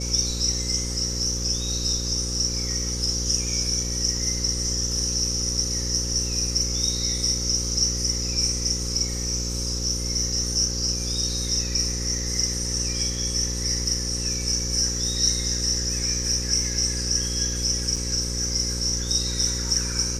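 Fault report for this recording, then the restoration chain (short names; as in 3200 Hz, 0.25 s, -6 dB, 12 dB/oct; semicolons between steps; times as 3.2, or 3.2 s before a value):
buzz 60 Hz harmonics 9 -30 dBFS
17.96 gap 4.9 ms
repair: de-hum 60 Hz, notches 9; interpolate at 17.96, 4.9 ms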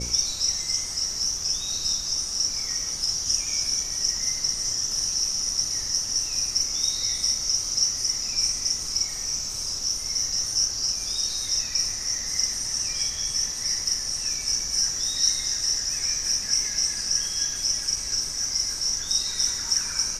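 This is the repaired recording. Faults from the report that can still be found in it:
none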